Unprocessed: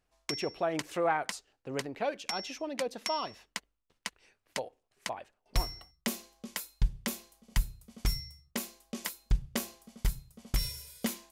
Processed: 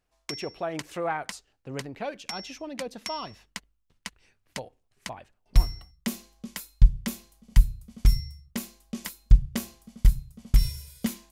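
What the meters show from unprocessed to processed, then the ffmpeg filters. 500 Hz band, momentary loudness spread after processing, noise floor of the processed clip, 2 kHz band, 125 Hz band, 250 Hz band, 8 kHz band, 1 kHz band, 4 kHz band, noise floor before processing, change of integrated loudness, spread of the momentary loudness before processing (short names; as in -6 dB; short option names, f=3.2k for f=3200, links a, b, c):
-1.0 dB, 19 LU, -73 dBFS, -0.5 dB, +11.0 dB, +4.0 dB, 0.0 dB, -1.0 dB, 0.0 dB, -79 dBFS, +6.5 dB, 10 LU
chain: -af "asubboost=boost=3.5:cutoff=230"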